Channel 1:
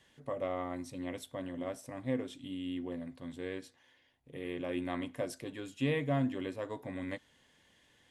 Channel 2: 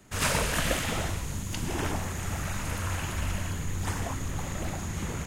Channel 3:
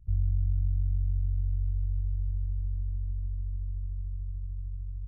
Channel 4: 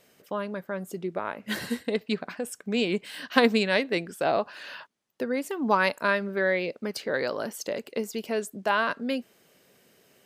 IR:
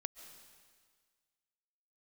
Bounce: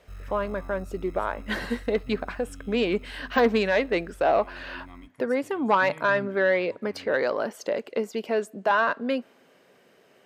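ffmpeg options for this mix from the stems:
-filter_complex "[0:a]bandreject=frequency=3500:width=12,aecho=1:1:0.9:0.65,volume=-11.5dB[link_01];[1:a]bandpass=frequency=1800:width_type=q:width=5.2:csg=0,volume=-18.5dB[link_02];[2:a]aecho=1:1:5.2:0.56,acrusher=samples=34:mix=1:aa=0.000001,volume=-12dB[link_03];[3:a]asplit=2[link_04][link_05];[link_05]highpass=frequency=720:poles=1,volume=13dB,asoftclip=type=tanh:threshold=-2dB[link_06];[link_04][link_06]amix=inputs=2:normalize=0,lowpass=frequency=1000:poles=1,volume=-6dB,deesser=0.7,asoftclip=type=tanh:threshold=-13dB,volume=1dB,asplit=3[link_07][link_08][link_09];[link_08]volume=-22dB[link_10];[link_09]apad=whole_len=232195[link_11];[link_02][link_11]sidechaincompress=threshold=-45dB:ratio=8:attack=16:release=512[link_12];[4:a]atrim=start_sample=2205[link_13];[link_10][link_13]afir=irnorm=-1:irlink=0[link_14];[link_01][link_12][link_03][link_07][link_14]amix=inputs=5:normalize=0,highpass=42"

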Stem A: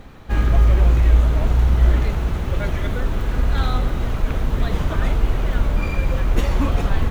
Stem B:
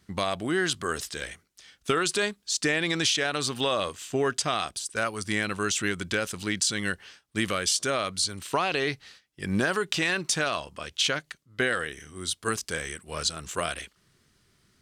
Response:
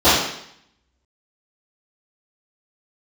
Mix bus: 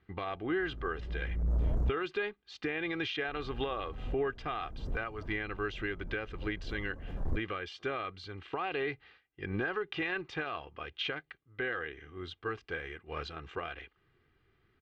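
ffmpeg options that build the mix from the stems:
-filter_complex "[0:a]asoftclip=type=tanh:threshold=-15dB,firequalizer=gain_entry='entry(440,0);entry(2700,-27);entry(5500,-15)':delay=0.05:min_phase=1,adelay=300,volume=-8dB,asplit=3[link_01][link_02][link_03];[link_01]atrim=end=1.92,asetpts=PTS-STARTPTS,afade=type=out:start_time=1.916:duration=0.004:curve=hsin[link_04];[link_02]atrim=start=1.92:end=3.28,asetpts=PTS-STARTPTS,volume=0[link_05];[link_03]atrim=start=3.28,asetpts=PTS-STARTPTS,afade=type=in:duration=0.004:curve=hsin[link_06];[link_04][link_05][link_06]concat=n=3:v=0:a=1[link_07];[1:a]tremolo=f=220:d=0.182,lowpass=frequency=2800:width=0.5412,lowpass=frequency=2800:width=1.3066,aecho=1:1:2.5:0.55,volume=-4dB,asplit=2[link_08][link_09];[link_09]apad=whole_len=331068[link_10];[link_07][link_10]sidechaincompress=threshold=-42dB:ratio=8:attack=7:release=390[link_11];[link_11][link_08]amix=inputs=2:normalize=0,alimiter=limit=-24dB:level=0:latency=1:release=340"

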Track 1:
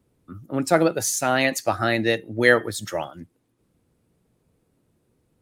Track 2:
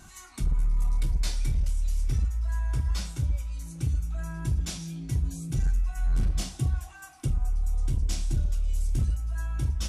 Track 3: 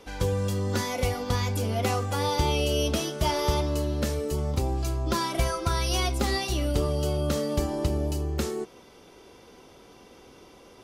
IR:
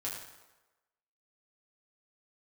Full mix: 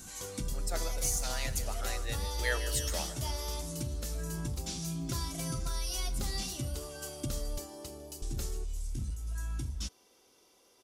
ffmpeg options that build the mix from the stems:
-filter_complex "[0:a]highpass=490,volume=-11dB,afade=type=in:start_time=2.28:duration=0.67:silence=0.375837,asplit=2[link_01][link_02];[link_02]volume=-13.5dB[link_03];[1:a]acrossover=split=5700[link_04][link_05];[link_05]acompressor=threshold=-53dB:ratio=4:attack=1:release=60[link_06];[link_04][link_06]amix=inputs=2:normalize=0,lowshelf=frequency=350:width_type=q:width=1.5:gain=9,alimiter=limit=-18dB:level=0:latency=1:release=319,volume=-3.5dB,asplit=3[link_07][link_08][link_09];[link_07]atrim=end=7.58,asetpts=PTS-STARTPTS,afade=type=out:start_time=7.576:duration=0.004:curve=hsin[link_10];[link_08]atrim=start=7.58:end=8.22,asetpts=PTS-STARTPTS,volume=0[link_11];[link_09]atrim=start=8.22,asetpts=PTS-STARTPTS,afade=type=in:duration=0.004:curve=hsin[link_12];[link_10][link_11][link_12]concat=n=3:v=0:a=1[link_13];[2:a]volume=-15.5dB,asplit=2[link_14][link_15];[link_15]volume=-22.5dB[link_16];[link_03][link_16]amix=inputs=2:normalize=0,aecho=0:1:153|306|459|612|765|918|1071|1224|1377:1|0.57|0.325|0.185|0.106|0.0602|0.0343|0.0195|0.0111[link_17];[link_01][link_13][link_14][link_17]amix=inputs=4:normalize=0,bass=frequency=250:gain=-9,treble=frequency=4000:gain=13"

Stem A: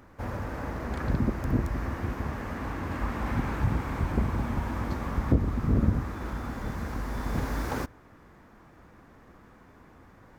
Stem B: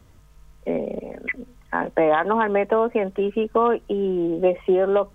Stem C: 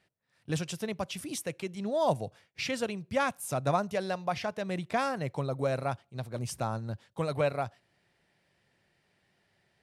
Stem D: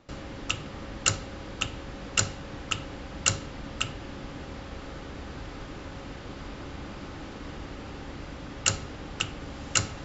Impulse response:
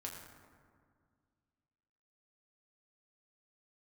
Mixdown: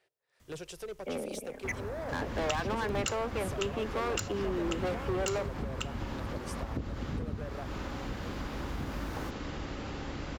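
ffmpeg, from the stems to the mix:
-filter_complex "[0:a]adelay=1450,volume=-6.5dB[link_01];[1:a]highshelf=frequency=2200:gain=9.5,asoftclip=type=hard:threshold=-20dB,adelay=400,volume=-10.5dB[link_02];[2:a]lowshelf=frequency=310:width_type=q:width=3:gain=-9,acrossover=split=410[link_03][link_04];[link_04]acompressor=threshold=-39dB:ratio=6[link_05];[link_03][link_05]amix=inputs=2:normalize=0,volume=33dB,asoftclip=hard,volume=-33dB,volume=-3dB,asplit=2[link_06][link_07];[3:a]aeval=exprs='0.335*(abs(mod(val(0)/0.335+3,4)-2)-1)':channel_layout=same,adelay=2000,volume=1.5dB[link_08];[link_07]apad=whole_len=531047[link_09];[link_08][link_09]sidechaincompress=threshold=-45dB:ratio=8:attack=16:release=201[link_10];[link_01][link_06][link_10]amix=inputs=3:normalize=0,acompressor=threshold=-32dB:ratio=5,volume=0dB[link_11];[link_02][link_11]amix=inputs=2:normalize=0"

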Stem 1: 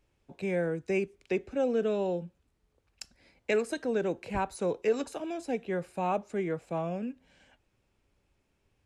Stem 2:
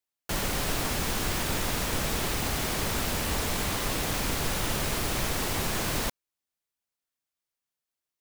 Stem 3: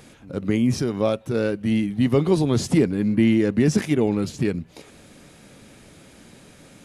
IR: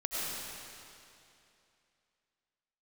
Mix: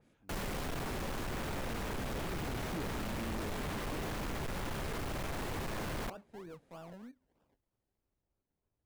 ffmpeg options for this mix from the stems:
-filter_complex "[0:a]acrusher=samples=30:mix=1:aa=0.000001:lfo=1:lforange=18:lforate=3.2,asoftclip=type=tanh:threshold=-29dB,adynamicequalizer=threshold=0.00355:dfrequency=1600:dqfactor=0.7:tfrequency=1600:tqfactor=0.7:attack=5:release=100:ratio=0.375:range=2:mode=cutabove:tftype=highshelf,volume=-13dB,asplit=2[link_01][link_02];[1:a]volume=-3.5dB[link_03];[2:a]volume=-19.5dB[link_04];[link_02]apad=whole_len=301698[link_05];[link_04][link_05]sidechaincompress=threshold=-50dB:ratio=8:attack=16:release=579[link_06];[link_01][link_03][link_06]amix=inputs=3:normalize=0,highshelf=frequency=2400:gain=-8,asoftclip=type=hard:threshold=-35dB,adynamicequalizer=threshold=0.00158:dfrequency=3400:dqfactor=0.7:tfrequency=3400:tqfactor=0.7:attack=5:release=100:ratio=0.375:range=2:mode=cutabove:tftype=highshelf"

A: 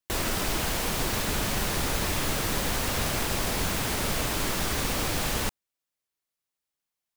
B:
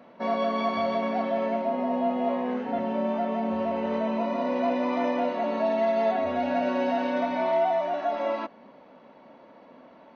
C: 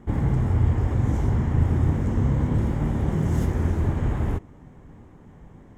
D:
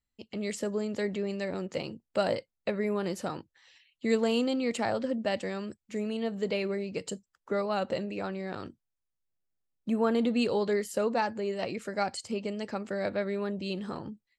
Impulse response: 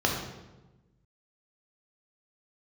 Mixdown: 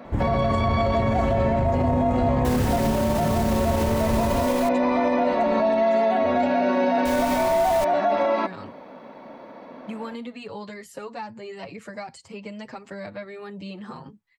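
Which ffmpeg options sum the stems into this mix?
-filter_complex "[0:a]adelay=2350,volume=-2dB,asplit=3[link_01][link_02][link_03];[link_01]atrim=end=4.69,asetpts=PTS-STARTPTS,afade=type=out:start_time=4.686:duration=0.004:curve=hsin[link_04];[link_02]atrim=start=4.69:end=7.05,asetpts=PTS-STARTPTS,volume=0[link_05];[link_03]atrim=start=7.05,asetpts=PTS-STARTPTS,afade=type=in:duration=0.004:curve=hsin[link_06];[link_04][link_05][link_06]concat=n=3:v=0:a=1[link_07];[1:a]bandreject=frequency=2900:width=8.5,acontrast=53,volume=3dB[link_08];[2:a]adelay=50,volume=1.5dB[link_09];[3:a]equalizer=frequency=125:width_type=o:width=1:gain=9,equalizer=frequency=1000:width_type=o:width=1:gain=11,equalizer=frequency=2000:width_type=o:width=1:gain=8,acrossover=split=190|1100|2500[link_10][link_11][link_12][link_13];[link_10]acompressor=threshold=-46dB:ratio=4[link_14];[link_11]acompressor=threshold=-37dB:ratio=4[link_15];[link_12]acompressor=threshold=-52dB:ratio=4[link_16];[link_13]acompressor=threshold=-46dB:ratio=4[link_17];[link_14][link_15][link_16][link_17]amix=inputs=4:normalize=0,asplit=2[link_18][link_19];[link_19]adelay=6.4,afreqshift=1.6[link_20];[link_18][link_20]amix=inputs=2:normalize=1,volume=2.5dB[link_21];[link_07][link_08][link_09][link_21]amix=inputs=4:normalize=0,alimiter=limit=-13.5dB:level=0:latency=1:release=45"

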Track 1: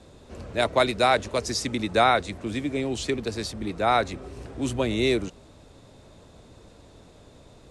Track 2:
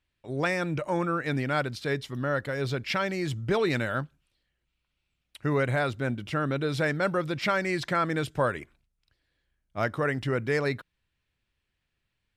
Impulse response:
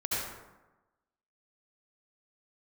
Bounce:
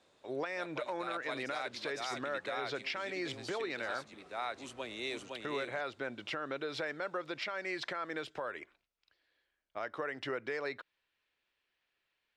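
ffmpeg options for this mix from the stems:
-filter_complex "[0:a]highpass=frequency=1400:poles=1,aemphasis=mode=reproduction:type=cd,volume=-8dB,asplit=2[link_01][link_02];[link_02]volume=-3dB[link_03];[1:a]acrossover=split=330 6100:gain=0.0794 1 0.126[link_04][link_05][link_06];[link_04][link_05][link_06]amix=inputs=3:normalize=0,acompressor=threshold=-34dB:ratio=6,volume=1dB,asplit=2[link_07][link_08];[link_08]apad=whole_len=339935[link_09];[link_01][link_09]sidechaincompress=threshold=-47dB:ratio=8:attack=49:release=249[link_10];[link_03]aecho=0:1:512:1[link_11];[link_10][link_07][link_11]amix=inputs=3:normalize=0,alimiter=level_in=3dB:limit=-24dB:level=0:latency=1:release=120,volume=-3dB"

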